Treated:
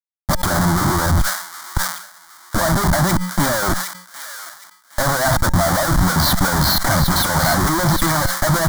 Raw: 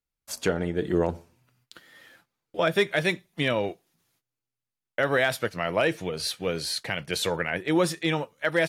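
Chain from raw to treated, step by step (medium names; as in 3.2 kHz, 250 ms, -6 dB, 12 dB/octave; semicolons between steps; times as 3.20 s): spectral gate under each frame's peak -25 dB strong; Gaussian low-pass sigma 2.1 samples; peaking EQ 550 Hz +7 dB 0.77 oct; in parallel at +1 dB: compressor with a negative ratio -23 dBFS, ratio -0.5; on the sum: waveshaping leveller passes 1; expander -44 dBFS; Schmitt trigger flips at -29 dBFS; static phaser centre 1.1 kHz, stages 4; feedback comb 180 Hz, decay 0.7 s, harmonics odd, mix 40%; on a send: feedback echo behind a high-pass 764 ms, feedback 33%, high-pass 1.5 kHz, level -9.5 dB; on the sum: loudness maximiser +14.5 dB; decay stretcher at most 87 dB/s; trim -4.5 dB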